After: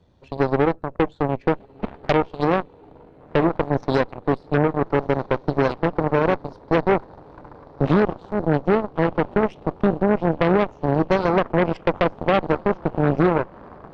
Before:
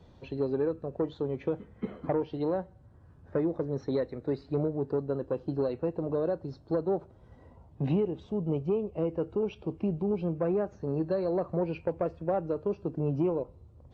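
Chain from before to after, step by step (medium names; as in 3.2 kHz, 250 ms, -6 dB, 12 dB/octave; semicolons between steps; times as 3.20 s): echo that smears into a reverb 1411 ms, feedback 67%, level -12 dB; Chebyshev shaper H 4 -12 dB, 5 -9 dB, 7 -7 dB, 8 -26 dB, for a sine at -16 dBFS; 7.98–8.43 s: transient shaper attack -5 dB, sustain -1 dB; trim +6 dB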